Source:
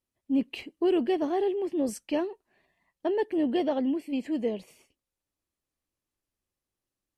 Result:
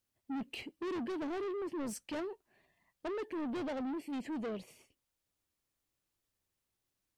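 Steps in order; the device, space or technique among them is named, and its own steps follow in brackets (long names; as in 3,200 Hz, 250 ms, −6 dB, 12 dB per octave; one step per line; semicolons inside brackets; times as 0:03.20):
open-reel tape (soft clipping −33.5 dBFS, distortion −7 dB; parametric band 110 Hz +4.5 dB 0.86 octaves; white noise bed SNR 47 dB)
level −2.5 dB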